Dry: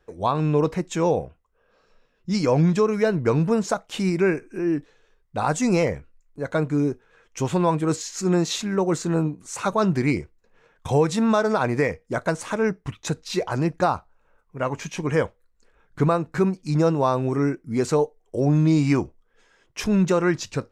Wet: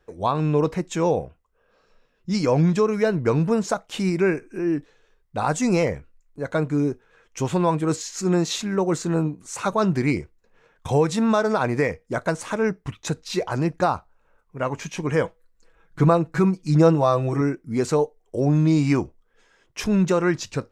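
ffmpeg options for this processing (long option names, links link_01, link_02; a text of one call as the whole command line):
ffmpeg -i in.wav -filter_complex "[0:a]asettb=1/sr,asplit=3[link_01][link_02][link_03];[link_01]atrim=end=15.234[link_04];[link_02]atrim=start=15.23:end=17.41,asetpts=PTS-STARTPTS,afade=type=in:duration=0.004:curve=qsin,afade=type=out:start_time=2.176:duration=0.004:curve=qsin,aecho=1:1:6.1:0.65,atrim=end_sample=96138[link_05];[link_03]atrim=start=17.406[link_06];[link_04][link_05]acrossfade=duration=0.004:curve1=hsin:curve2=qsin[link_07];[link_07][link_06]acrossfade=duration=0.004:curve1=qsin:curve2=hsin" out.wav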